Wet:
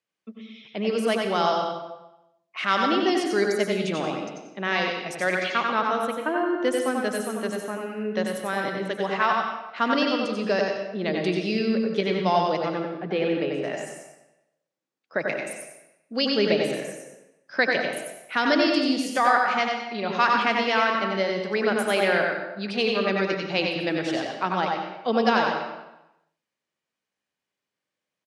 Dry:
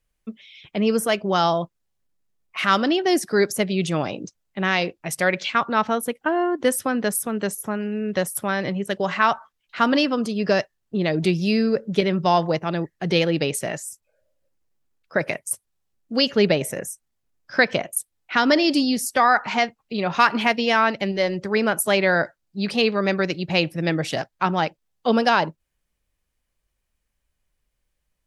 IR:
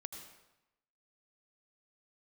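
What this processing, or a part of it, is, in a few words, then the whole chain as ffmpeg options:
supermarket ceiling speaker: -filter_complex "[0:a]asettb=1/sr,asplit=3[a][b][c];[a]atrim=end=12.684[d];[b]atrim=start=12.68:end=13.64,asetpts=PTS-STARTPTS,afade=t=in:d=0.004:c=qsin,afade=t=out:st=0.956:d=0.004:c=qsin,lowpass=2k[e];[c]atrim=start=13.636[f];[d][e]acrossfade=d=0.004:c1=hsin:c2=qsin[g];[g][f]acrossfade=d=0.004:c1=qsin:c2=hsin,highpass=130,highpass=200,lowpass=6.2k[h];[1:a]atrim=start_sample=2205[i];[h][i]afir=irnorm=-1:irlink=0,aecho=1:1:93:0.596"

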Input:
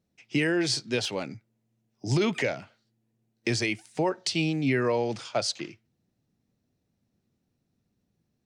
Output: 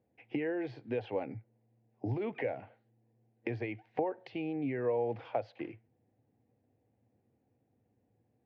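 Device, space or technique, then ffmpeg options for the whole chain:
bass amplifier: -af "acompressor=threshold=-36dB:ratio=5,highpass=76,equalizer=f=110:t=q:w=4:g=7,equalizer=f=170:t=q:w=4:g=-9,equalizer=f=290:t=q:w=4:g=4,equalizer=f=490:t=q:w=4:g=9,equalizer=f=780:t=q:w=4:g=9,equalizer=f=1.3k:t=q:w=4:g=-8,lowpass=f=2.3k:w=0.5412,lowpass=f=2.3k:w=1.3066"

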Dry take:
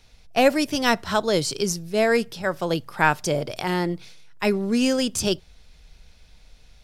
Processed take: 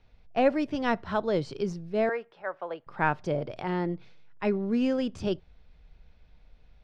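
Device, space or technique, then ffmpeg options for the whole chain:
phone in a pocket: -filter_complex "[0:a]lowpass=3.5k,highshelf=f=2.1k:g=-10,asettb=1/sr,asplit=3[a][b][c];[a]atrim=end=2.094[d];[b]atrim=start=2.09:end=2.87,asetpts=PTS-STARTPTS,afade=t=in:d=0.004:c=qsin,afade=t=out:st=0.776:d=0.004:c=qsin,acrossover=split=490 2600:gain=0.0631 1 0.158[e][f][g];[e][f][g]amix=inputs=3:normalize=0[h];[c]atrim=start=2.866[i];[d][h]acrossfade=d=0.004:c1=hsin:c2=qsin[j];[j][i]acrossfade=d=0.004:c1=qsin:c2=hsin,volume=-4.5dB"

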